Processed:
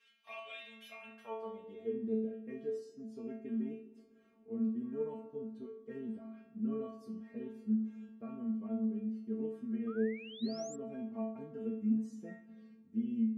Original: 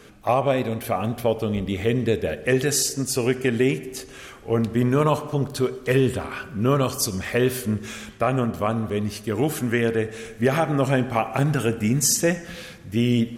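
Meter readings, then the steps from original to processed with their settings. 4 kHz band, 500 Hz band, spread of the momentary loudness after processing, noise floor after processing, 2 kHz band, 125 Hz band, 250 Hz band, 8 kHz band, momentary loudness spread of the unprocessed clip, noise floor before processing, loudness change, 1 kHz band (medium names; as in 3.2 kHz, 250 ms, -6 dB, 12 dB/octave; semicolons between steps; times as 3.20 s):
under -20 dB, -18.5 dB, 14 LU, -63 dBFS, -25.0 dB, -26.5 dB, -12.0 dB, under -30 dB, 8 LU, -43 dBFS, -16.5 dB, -25.5 dB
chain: band-pass sweep 2.8 kHz -> 270 Hz, 0.92–1.98 s; inharmonic resonator 220 Hz, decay 0.67 s, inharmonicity 0.002; painted sound rise, 9.87–10.76 s, 1.2–7.7 kHz -58 dBFS; trim +6.5 dB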